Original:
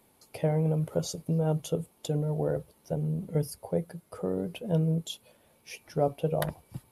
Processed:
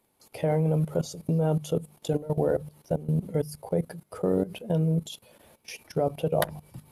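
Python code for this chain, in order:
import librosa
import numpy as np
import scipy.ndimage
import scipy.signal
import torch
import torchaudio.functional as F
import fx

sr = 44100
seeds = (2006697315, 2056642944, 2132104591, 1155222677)

y = fx.hum_notches(x, sr, base_hz=50, count=5)
y = fx.level_steps(y, sr, step_db=16)
y = F.gain(torch.from_numpy(y), 8.5).numpy()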